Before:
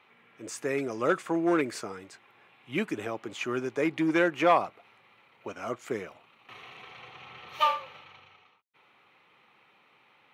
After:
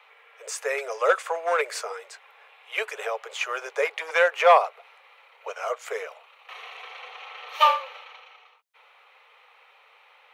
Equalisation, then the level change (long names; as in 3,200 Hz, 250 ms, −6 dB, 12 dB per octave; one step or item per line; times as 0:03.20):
Butterworth high-pass 440 Hz 96 dB per octave
+6.5 dB